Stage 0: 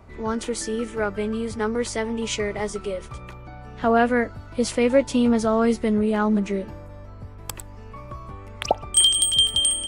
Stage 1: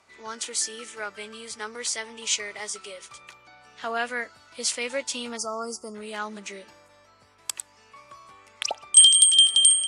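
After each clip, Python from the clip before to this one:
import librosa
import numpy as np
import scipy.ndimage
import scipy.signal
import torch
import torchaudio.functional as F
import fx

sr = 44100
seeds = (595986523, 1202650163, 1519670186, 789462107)

y = fx.high_shelf(x, sr, hz=9800.0, db=4.5)
y = fx.spec_box(y, sr, start_s=5.37, length_s=0.58, low_hz=1400.0, high_hz=4500.0, gain_db=-27)
y = fx.weighting(y, sr, curve='ITU-R 468')
y = y * librosa.db_to_amplitude(-7.5)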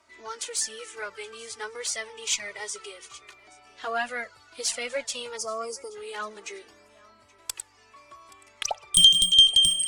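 y = x + 10.0 ** (-22.5 / 20.0) * np.pad(x, (int(825 * sr / 1000.0), 0))[:len(x)]
y = fx.cheby_harmonics(y, sr, harmonics=(4,), levels_db=(-25,), full_scale_db=-1.0)
y = fx.env_flanger(y, sr, rest_ms=3.2, full_db=-15.5)
y = y * librosa.db_to_amplitude(1.5)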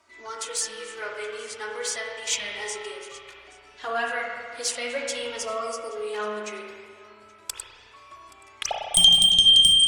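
y = fx.rev_spring(x, sr, rt60_s=1.9, pass_ms=(33, 52), chirp_ms=80, drr_db=-0.5)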